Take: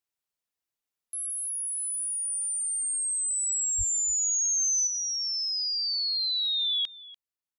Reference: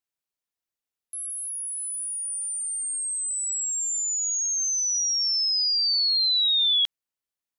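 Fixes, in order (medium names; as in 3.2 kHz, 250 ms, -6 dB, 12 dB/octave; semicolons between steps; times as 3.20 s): de-plosive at 3.77 s; inverse comb 292 ms -19 dB; trim 0 dB, from 4.87 s +6 dB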